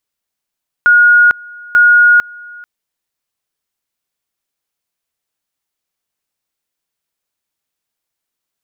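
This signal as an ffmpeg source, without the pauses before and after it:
-f lavfi -i "aevalsrc='pow(10,(-4-25.5*gte(mod(t,0.89),0.45))/20)*sin(2*PI*1440*t)':d=1.78:s=44100"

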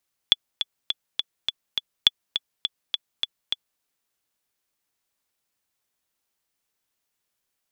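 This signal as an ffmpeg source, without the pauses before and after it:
-f lavfi -i "aevalsrc='pow(10,(-1-9.5*gte(mod(t,6*60/206),60/206))/20)*sin(2*PI*3430*mod(t,60/206))*exp(-6.91*mod(t,60/206)/0.03)':d=3.49:s=44100"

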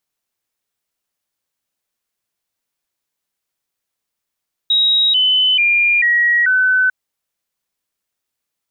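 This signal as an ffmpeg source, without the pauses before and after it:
-f lavfi -i "aevalsrc='0.299*clip(min(mod(t,0.44),0.44-mod(t,0.44))/0.005,0,1)*sin(2*PI*3810*pow(2,-floor(t/0.44)/3)*mod(t,0.44))':d=2.2:s=44100"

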